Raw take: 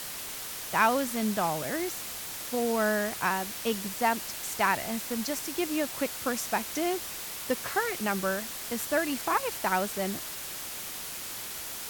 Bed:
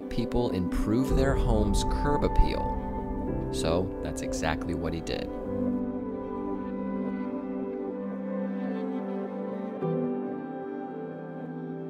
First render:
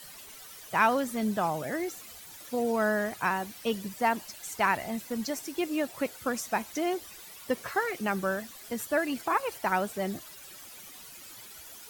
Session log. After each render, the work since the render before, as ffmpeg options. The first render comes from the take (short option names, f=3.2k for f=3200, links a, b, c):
-af "afftdn=nr=13:nf=-39"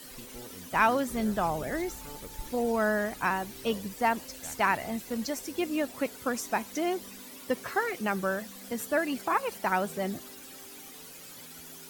-filter_complex "[1:a]volume=-19.5dB[a];[0:a][a]amix=inputs=2:normalize=0"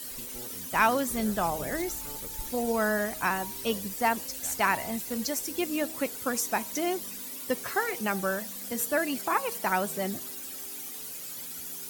-af "highshelf=f=5.6k:g=10.5,bandreject=f=158.2:t=h:w=4,bandreject=f=316.4:t=h:w=4,bandreject=f=474.6:t=h:w=4,bandreject=f=632.8:t=h:w=4,bandreject=f=791:t=h:w=4,bandreject=f=949.2:t=h:w=4,bandreject=f=1.1074k:t=h:w=4"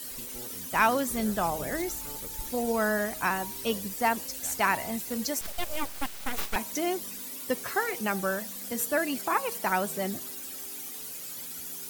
-filter_complex "[0:a]asettb=1/sr,asplit=3[a][b][c];[a]atrim=end=5.414[d];[b]atrim=start=5.41:end=6.56,asetpts=PTS-STARTPTS,afade=t=in:d=0.004:c=qsin,afade=t=out:st=1.146:d=0.004:c=qsin,aeval=exprs='abs(val(0))':c=same[e];[c]atrim=start=6.556[f];[d][e]acrossfade=d=0.004:c1=hsin:c2=qsin[g];[g][f]acrossfade=d=0.004:c1=qsin:c2=hsin"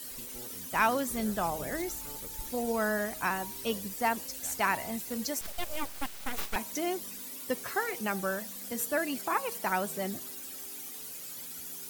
-af "volume=-3dB"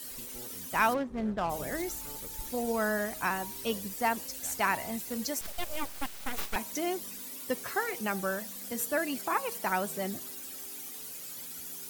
-filter_complex "[0:a]asplit=3[a][b][c];[a]afade=t=out:st=0.93:d=0.02[d];[b]adynamicsmooth=sensitivity=4.5:basefreq=690,afade=t=in:st=0.93:d=0.02,afade=t=out:st=1.49:d=0.02[e];[c]afade=t=in:st=1.49:d=0.02[f];[d][e][f]amix=inputs=3:normalize=0"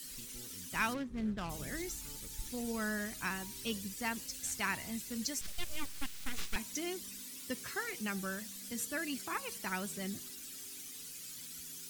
-filter_complex "[0:a]acrossover=split=9700[a][b];[b]acompressor=threshold=-50dB:ratio=4:attack=1:release=60[c];[a][c]amix=inputs=2:normalize=0,equalizer=f=700:t=o:w=1.9:g=-14.5"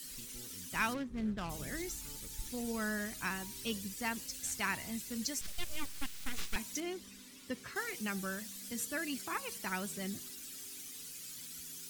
-filter_complex "[0:a]asettb=1/sr,asplit=3[a][b][c];[a]atrim=end=6.804[d];[b]atrim=start=6.8:end=7.76,asetpts=PTS-STARTPTS,afade=t=in:d=0.004:c=qsin,afade=t=out:st=0.956:d=0.004:c=qsin,lowpass=f=2.9k:p=1[e];[c]atrim=start=7.756[f];[d][e]acrossfade=d=0.004:c1=hsin:c2=qsin[g];[g][f]acrossfade=d=0.004:c1=qsin:c2=hsin"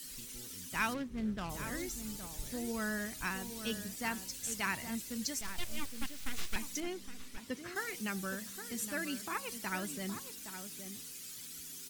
-filter_complex "[0:a]asplit=2[a][b];[b]adelay=816.3,volume=-9dB,highshelf=f=4k:g=-18.4[c];[a][c]amix=inputs=2:normalize=0"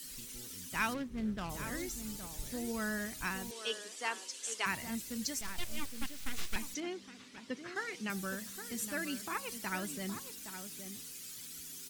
-filter_complex "[0:a]asettb=1/sr,asplit=3[a][b][c];[a]atrim=end=3.514[d];[b]atrim=start=3.51:end=4.66,asetpts=PTS-STARTPTS,afade=t=in:d=0.004:c=qsin,afade=t=out:st=1.146:d=0.004:c=qsin,highpass=f=360:w=0.5412,highpass=f=360:w=1.3066,equalizer=f=420:t=q:w=4:g=4,equalizer=f=1.1k:t=q:w=4:g=4,equalizer=f=3.1k:t=q:w=4:g=5,lowpass=f=9.2k:w=0.5412,lowpass=f=9.2k:w=1.3066[e];[c]atrim=start=4.656[f];[d][e]acrossfade=d=0.004:c1=hsin:c2=qsin[g];[g][f]acrossfade=d=0.004:c1=qsin:c2=hsin,asettb=1/sr,asplit=3[h][i][j];[h]atrim=end=6.744[k];[i]atrim=start=6.74:end=8.1,asetpts=PTS-STARTPTS,afade=t=in:d=0.004:c=qsin,afade=t=out:st=1.356:d=0.004:c=qsin,highpass=140,lowpass=5.8k[l];[j]atrim=start=8.096[m];[k][l]acrossfade=d=0.004:c1=hsin:c2=qsin[n];[n][m]acrossfade=d=0.004:c1=qsin:c2=hsin"